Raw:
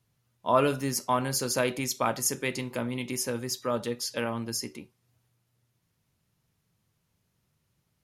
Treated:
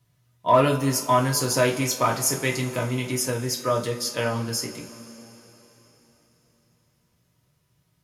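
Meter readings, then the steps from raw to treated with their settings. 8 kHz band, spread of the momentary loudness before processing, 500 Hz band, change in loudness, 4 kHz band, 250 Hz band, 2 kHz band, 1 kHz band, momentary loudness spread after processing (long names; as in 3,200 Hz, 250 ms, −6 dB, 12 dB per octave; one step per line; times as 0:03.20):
+5.0 dB, 8 LU, +5.5 dB, +5.5 dB, +5.0 dB, +5.0 dB, +5.5 dB, +6.5 dB, 10 LU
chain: in parallel at −10 dB: wave folding −18 dBFS
on the sum: coupled-rooms reverb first 0.23 s, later 4.1 s, from −22 dB, DRR −0.5 dB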